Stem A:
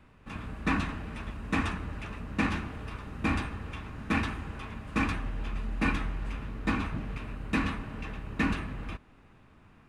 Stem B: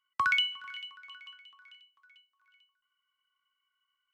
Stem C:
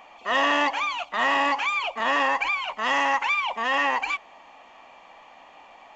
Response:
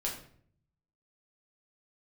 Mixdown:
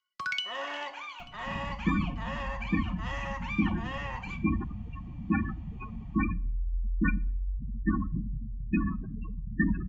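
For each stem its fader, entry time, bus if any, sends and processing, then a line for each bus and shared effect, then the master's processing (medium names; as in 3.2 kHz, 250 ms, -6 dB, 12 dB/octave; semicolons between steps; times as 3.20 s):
+2.0 dB, 1.20 s, send -20 dB, spectral gate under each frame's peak -10 dB strong; upward compressor, threshold -47 dBFS
-2.0 dB, 0.00 s, send -16.5 dB, peaking EQ 4.9 kHz +10.5 dB 0.75 oct; rotary cabinet horn 1.2 Hz
-19.0 dB, 0.20 s, send -6.5 dB, none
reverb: on, RT60 0.55 s, pre-delay 5 ms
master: comb 5.6 ms, depth 40%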